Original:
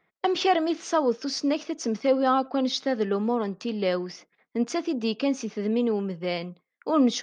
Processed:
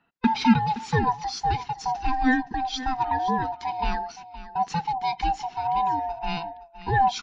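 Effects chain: split-band scrambler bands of 500 Hz; low-pass 5.1 kHz 12 dB/octave; delay 518 ms -14.5 dB; 2.34–2.80 s: compression, threshold -24 dBFS, peak gain reduction 5.5 dB; peaking EQ 240 Hz +6 dB 0.85 oct

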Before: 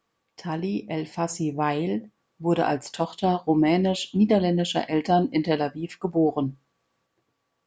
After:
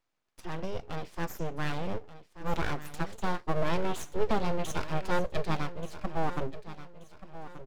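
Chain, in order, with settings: bass shelf 130 Hz +9 dB; full-wave rectifier; feedback delay 1181 ms, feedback 35%, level -14 dB; trim -6.5 dB

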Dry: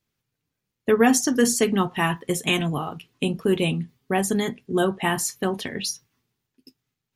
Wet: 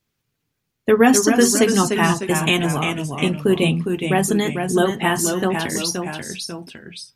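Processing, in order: ever faster or slower copies 202 ms, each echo -1 st, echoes 2, each echo -6 dB; trim +4 dB

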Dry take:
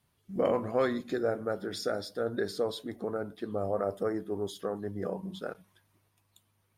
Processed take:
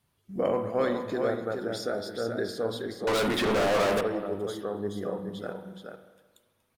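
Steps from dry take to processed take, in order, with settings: delay 424 ms -5.5 dB; 3.07–4.01 s: overdrive pedal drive 38 dB, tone 6.5 kHz, clips at -19 dBFS; spring tank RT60 1.3 s, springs 44/52 ms, chirp 35 ms, DRR 9 dB

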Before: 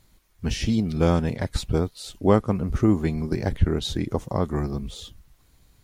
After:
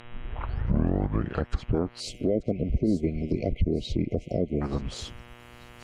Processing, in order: tape start-up on the opening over 1.73 s; mains buzz 120 Hz, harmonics 32, -46 dBFS -2 dB/octave; spectral selection erased 2.00–4.61 s, 730–2000 Hz; band-stop 3.6 kHz, Q 6.1; harmonic-percussive split harmonic -15 dB; in parallel at -0.5 dB: compression, threshold -34 dBFS, peak gain reduction 19.5 dB; on the sum: peak limiter -17 dBFS, peak gain reduction 10 dB; low-pass that closes with the level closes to 1.2 kHz, closed at -22.5 dBFS; on a send: feedback echo behind a high-pass 883 ms, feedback 46%, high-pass 5 kHz, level -11.5 dB; on the sum: trim +2 dB

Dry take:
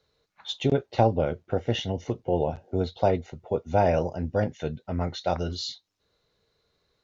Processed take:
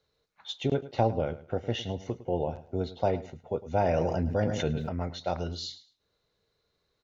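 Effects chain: on a send: feedback delay 106 ms, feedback 22%, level -16 dB; 3.81–4.89 s: on the sum: level flattener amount 70%; trim -4.5 dB

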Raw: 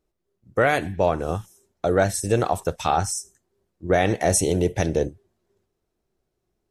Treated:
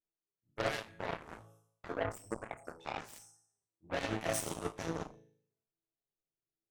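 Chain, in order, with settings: 1.88–2.94 s: resonances exaggerated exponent 3; chord resonator A2 major, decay 0.62 s; Chebyshev shaper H 4 -13 dB, 6 -18 dB, 7 -14 dB, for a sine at -25 dBFS; trim +3 dB

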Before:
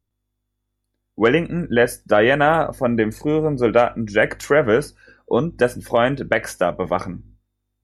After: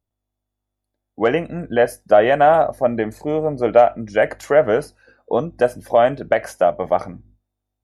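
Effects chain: peaking EQ 680 Hz +12 dB 0.7 oct; trim -5 dB

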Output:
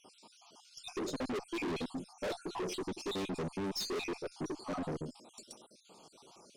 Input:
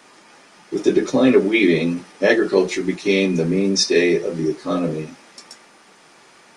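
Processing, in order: random holes in the spectrogram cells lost 52%; Butterworth band-stop 1.8 kHz, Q 0.96; valve stage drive 30 dB, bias 0.3; trim -4.5 dB

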